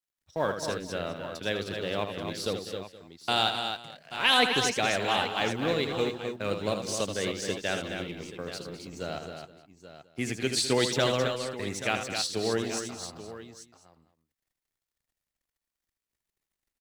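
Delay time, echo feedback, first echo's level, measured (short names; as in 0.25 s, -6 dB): 79 ms, no steady repeat, -8.0 dB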